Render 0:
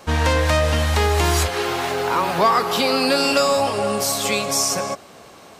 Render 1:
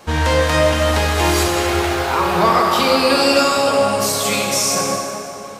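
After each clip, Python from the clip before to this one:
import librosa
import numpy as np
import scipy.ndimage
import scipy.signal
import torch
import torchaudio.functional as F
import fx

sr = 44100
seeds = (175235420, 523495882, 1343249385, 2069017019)

y = fx.rev_plate(x, sr, seeds[0], rt60_s=2.9, hf_ratio=0.65, predelay_ms=0, drr_db=-1.5)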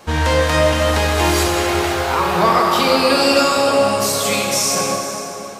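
y = x + 10.0 ** (-14.0 / 20.0) * np.pad(x, (int(492 * sr / 1000.0), 0))[:len(x)]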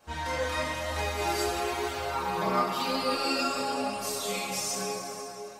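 y = fx.chorus_voices(x, sr, voices=2, hz=0.97, base_ms=28, depth_ms=3.5, mix_pct=50)
y = fx.stiff_resonator(y, sr, f0_hz=61.0, decay_s=0.39, stiffness=0.008)
y = F.gain(torch.from_numpy(y), -2.5).numpy()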